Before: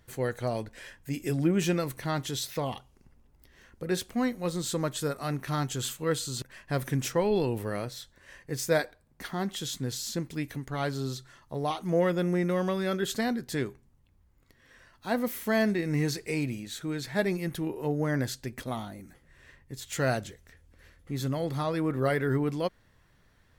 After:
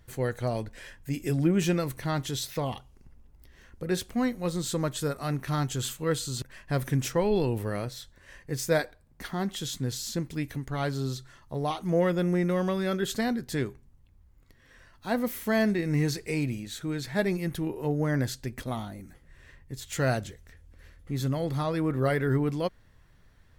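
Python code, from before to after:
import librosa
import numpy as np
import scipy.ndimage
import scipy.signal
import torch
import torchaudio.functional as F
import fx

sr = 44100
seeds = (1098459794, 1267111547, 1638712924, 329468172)

y = fx.low_shelf(x, sr, hz=99.0, db=8.5)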